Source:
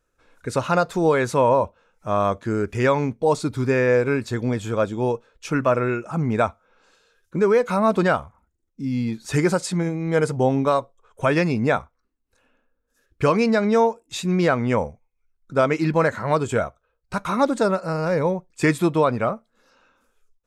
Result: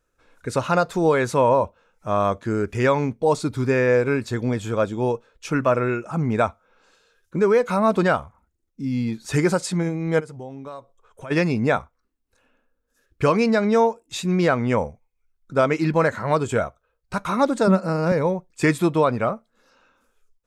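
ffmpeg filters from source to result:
-filter_complex "[0:a]asplit=3[a][b][c];[a]afade=t=out:st=10.19:d=0.02[d];[b]acompressor=threshold=-41dB:ratio=2.5:attack=3.2:release=140:knee=1:detection=peak,afade=t=in:st=10.19:d=0.02,afade=t=out:st=11.3:d=0.02[e];[c]afade=t=in:st=11.3:d=0.02[f];[d][e][f]amix=inputs=3:normalize=0,asettb=1/sr,asplit=3[g][h][i];[g]atrim=end=17.674[j];[h]atrim=start=17.67:end=18.12,asetpts=PTS-STARTPTS,afade=t=in:d=0.004:c=qsin,afade=t=out:st=0.446:d=0.004:c=qsin,highpass=f=210:t=q:w=4.9[k];[i]atrim=start=18.116[l];[j][k]acrossfade=d=0.004:c1=hsin:c2=qsin[m];[m][l]acrossfade=d=0.004:c1=qsin:c2=hsin"

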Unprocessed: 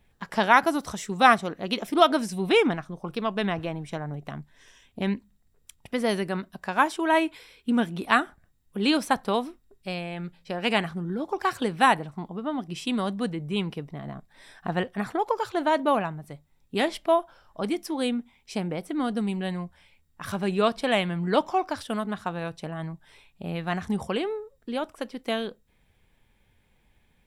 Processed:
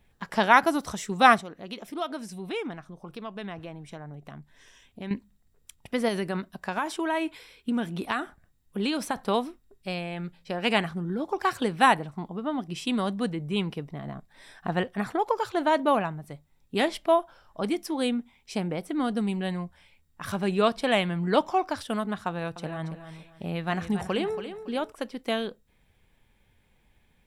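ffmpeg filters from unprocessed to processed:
-filter_complex "[0:a]asettb=1/sr,asplit=3[a][b][c];[a]atrim=end=1.414[d];[b]atrim=start=1.41:end=5.11,asetpts=PTS-STARTPTS,afade=t=in:d=0.004:c=qsin,afade=t=out:st=3.696:d=0.004:c=qsin,acompressor=threshold=-51dB:ratio=1.5:attack=3.2:release=140:knee=1:detection=peak[e];[c]atrim=start=5.106[f];[d][e]acrossfade=d=0.004:c1=hsin:c2=qsin[g];[g][f]acrossfade=d=0.004:c1=qsin:c2=hsin,asettb=1/sr,asplit=3[h][i][j];[h]atrim=end=6.084[k];[i]atrim=start=6.08:end=9.17,asetpts=PTS-STARTPTS,afade=t=in:d=0.004:c=qsin,afade=t=out:st=3.086:d=0.004:c=qsin,acompressor=threshold=-23dB:ratio=6:attack=3.2:release=140:knee=1:detection=peak[l];[j]atrim=start=9.166[m];[k][l]acrossfade=d=0.004:c1=hsin:c2=qsin[n];[n][m]acrossfade=d=0.004:c1=qsin:c2=hsin,asettb=1/sr,asplit=3[o][p][q];[o]atrim=end=22.284[r];[p]atrim=start=22.28:end=24.92,asetpts=PTS-STARTPTS,afade=t=in:d=0.004:c=qsin,afade=t=out:st=2.636:d=0.004:c=qsin,aecho=1:1:280|560|840:0.299|0.0836|0.0234,atrim=end_sample=116424[s];[q]atrim=start=24.916[t];[r][s]acrossfade=d=0.004:c1=hsin:c2=qsin[u];[u][t]acrossfade=d=0.004:c1=qsin:c2=hsin"

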